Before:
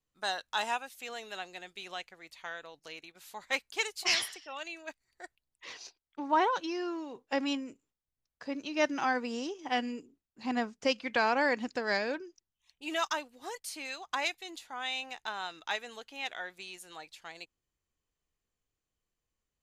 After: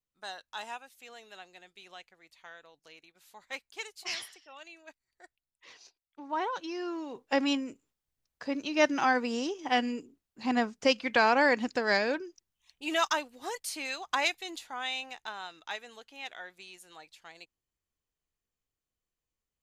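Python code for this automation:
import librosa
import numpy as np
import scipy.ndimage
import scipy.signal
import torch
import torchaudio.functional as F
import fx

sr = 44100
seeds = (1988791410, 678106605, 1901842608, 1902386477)

y = fx.gain(x, sr, db=fx.line((6.2, -8.0), (7.23, 4.0), (14.52, 4.0), (15.51, -4.0)))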